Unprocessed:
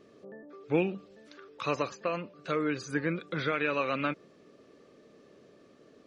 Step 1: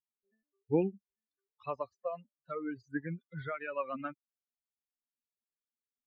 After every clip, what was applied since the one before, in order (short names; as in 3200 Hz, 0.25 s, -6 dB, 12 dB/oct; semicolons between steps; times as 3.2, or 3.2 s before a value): per-bin expansion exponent 3; LPF 1300 Hz 12 dB/oct; gain +1.5 dB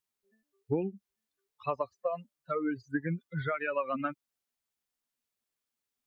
compressor 10:1, threshold -34 dBFS, peak gain reduction 12 dB; gain +7.5 dB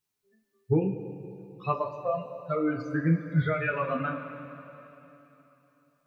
bell 100 Hz +10.5 dB 1.1 oct; two-slope reverb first 0.21 s, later 3.3 s, from -18 dB, DRR -2 dB